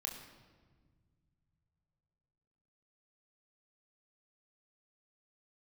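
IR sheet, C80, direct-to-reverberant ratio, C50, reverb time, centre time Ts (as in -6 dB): 8.0 dB, 0.5 dB, 6.5 dB, 1.6 s, 37 ms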